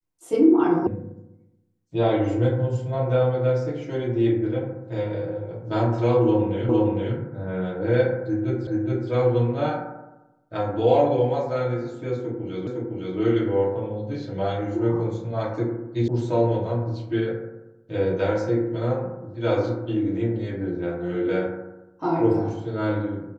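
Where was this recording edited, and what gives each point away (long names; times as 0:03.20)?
0:00.87: cut off before it has died away
0:06.69: the same again, the last 0.46 s
0:08.67: the same again, the last 0.42 s
0:12.67: the same again, the last 0.51 s
0:16.08: cut off before it has died away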